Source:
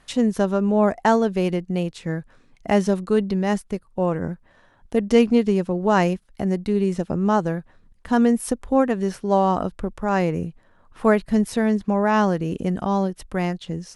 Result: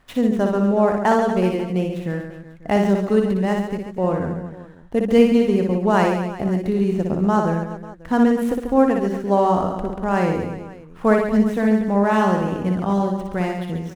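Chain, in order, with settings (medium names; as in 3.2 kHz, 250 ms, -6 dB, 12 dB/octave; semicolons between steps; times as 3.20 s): median filter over 9 samples; on a send: reverse bouncing-ball echo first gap 60 ms, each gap 1.3×, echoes 5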